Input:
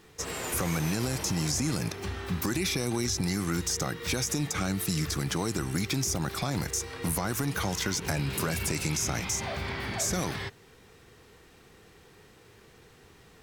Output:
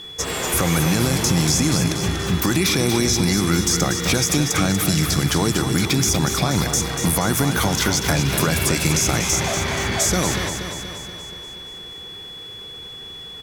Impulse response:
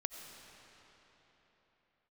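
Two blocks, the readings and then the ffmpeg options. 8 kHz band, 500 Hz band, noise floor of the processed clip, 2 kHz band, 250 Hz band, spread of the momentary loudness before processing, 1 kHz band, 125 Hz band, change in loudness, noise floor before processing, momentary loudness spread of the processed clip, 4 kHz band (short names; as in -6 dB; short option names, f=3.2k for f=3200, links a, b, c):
+11.0 dB, +11.0 dB, -36 dBFS, +11.0 dB, +11.0 dB, 5 LU, +11.0 dB, +10.5 dB, +11.0 dB, -56 dBFS, 16 LU, +12.5 dB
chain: -filter_complex "[0:a]aecho=1:1:239|478|717|956|1195|1434|1673|1912:0.422|0.249|0.147|0.0866|0.0511|0.0301|0.0178|0.0105,aeval=exprs='val(0)+0.00631*sin(2*PI*3400*n/s)':c=same,asplit=2[a][b];[1:a]atrim=start_sample=2205[c];[b][c]afir=irnorm=-1:irlink=0,volume=-11dB[d];[a][d]amix=inputs=2:normalize=0,volume=8dB"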